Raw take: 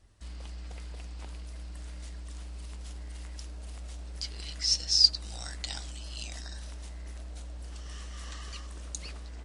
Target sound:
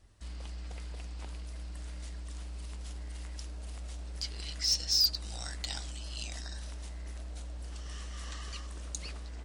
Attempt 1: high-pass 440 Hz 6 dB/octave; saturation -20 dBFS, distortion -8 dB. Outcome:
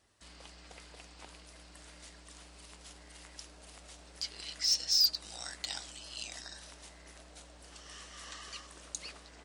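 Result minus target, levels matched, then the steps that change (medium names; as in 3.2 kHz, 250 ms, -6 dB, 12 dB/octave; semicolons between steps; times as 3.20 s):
500 Hz band -5.5 dB
remove: high-pass 440 Hz 6 dB/octave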